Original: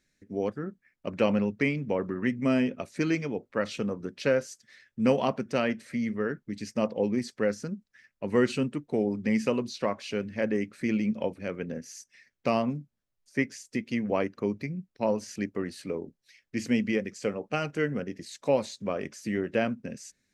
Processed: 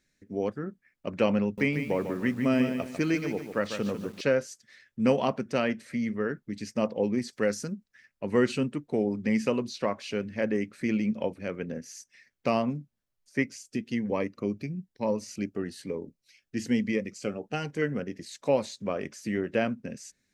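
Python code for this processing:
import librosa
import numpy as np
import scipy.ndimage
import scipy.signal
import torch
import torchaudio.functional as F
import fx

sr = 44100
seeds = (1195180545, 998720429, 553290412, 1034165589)

y = fx.echo_crushed(x, sr, ms=147, feedback_pct=35, bits=8, wet_db=-8.0, at=(1.43, 4.21))
y = fx.high_shelf(y, sr, hz=fx.line((7.32, 3500.0), (7.72, 5600.0)), db=11.5, at=(7.32, 7.72), fade=0.02)
y = fx.notch_cascade(y, sr, direction='rising', hz=1.1, at=(13.43, 17.82))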